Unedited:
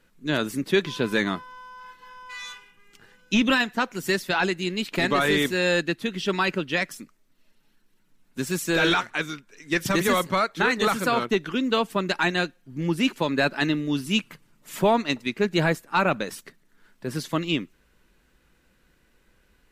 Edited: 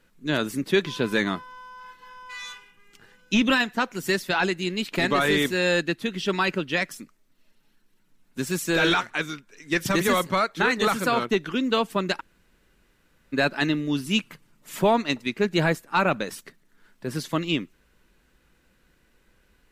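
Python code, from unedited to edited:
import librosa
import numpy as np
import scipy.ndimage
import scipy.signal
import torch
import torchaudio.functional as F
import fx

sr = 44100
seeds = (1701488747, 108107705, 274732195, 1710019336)

y = fx.edit(x, sr, fx.room_tone_fill(start_s=12.2, length_s=1.13, crossfade_s=0.02), tone=tone)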